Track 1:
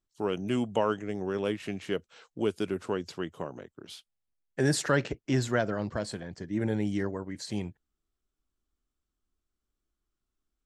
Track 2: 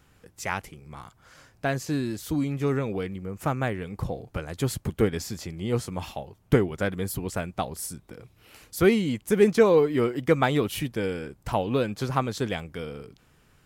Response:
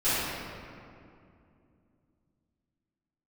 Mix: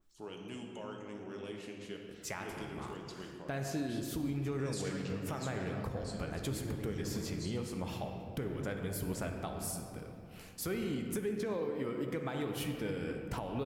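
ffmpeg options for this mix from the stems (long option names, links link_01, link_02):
-filter_complex "[0:a]acompressor=mode=upward:threshold=-39dB:ratio=2.5,alimiter=limit=-21dB:level=0:latency=1,adynamicequalizer=threshold=0.00224:dfrequency=2200:dqfactor=0.7:tfrequency=2200:tqfactor=0.7:attack=5:release=100:ratio=0.375:range=4:mode=boostabove:tftype=highshelf,volume=-16.5dB,asplit=2[link_01][link_02];[link_02]volume=-14dB[link_03];[1:a]agate=range=-10dB:threshold=-54dB:ratio=16:detection=peak,acompressor=threshold=-30dB:ratio=2.5,adelay=1850,volume=-5.5dB,asplit=2[link_04][link_05];[link_05]volume=-17.5dB[link_06];[2:a]atrim=start_sample=2205[link_07];[link_03][link_06]amix=inputs=2:normalize=0[link_08];[link_08][link_07]afir=irnorm=-1:irlink=0[link_09];[link_01][link_04][link_09]amix=inputs=3:normalize=0,alimiter=level_in=3dB:limit=-24dB:level=0:latency=1:release=187,volume=-3dB"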